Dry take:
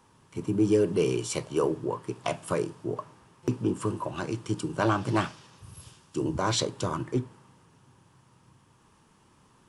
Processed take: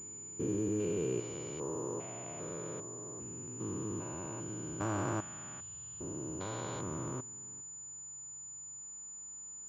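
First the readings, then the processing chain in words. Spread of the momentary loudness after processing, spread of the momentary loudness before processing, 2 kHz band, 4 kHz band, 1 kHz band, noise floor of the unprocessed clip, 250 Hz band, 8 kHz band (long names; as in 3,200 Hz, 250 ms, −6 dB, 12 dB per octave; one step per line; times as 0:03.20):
10 LU, 13 LU, −11.5 dB, −18.0 dB, −11.0 dB, −62 dBFS, −9.5 dB, +2.0 dB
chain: spectrum averaged block by block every 400 ms
switching amplifier with a slow clock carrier 7,000 Hz
level −6.5 dB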